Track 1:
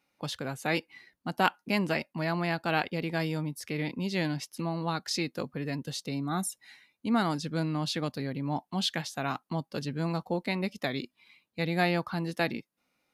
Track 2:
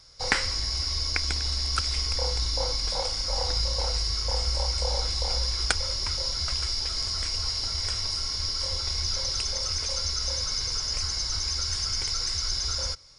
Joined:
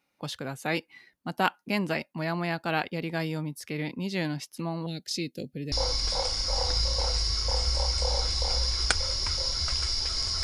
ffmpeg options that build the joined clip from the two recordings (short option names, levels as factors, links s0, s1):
-filter_complex "[0:a]asettb=1/sr,asplit=3[s0][s1][s2];[s0]atrim=end=4.864[s3];[s1]atrim=start=4.86:end=5.72,asetpts=PTS-STARTPTS,afade=t=in:d=0.004:c=qsin,afade=t=out:st=0.856:d=0.004:c=qsin,asuperstop=centerf=1100:order=4:qfactor=0.55[s4];[s2]atrim=start=5.716[s5];[s3][s4]acrossfade=d=0.004:c1=hsin:c2=qsin[s6];[s6][s5]acrossfade=d=0.004:c1=qsin:c2=hsin,apad=whole_dur=10.43,atrim=end=10.43,atrim=end=5.722[s7];[1:a]atrim=start=2.518:end=7.23[s8];[s7][s8]acrossfade=d=0.004:c1=hsin:c2=hsin"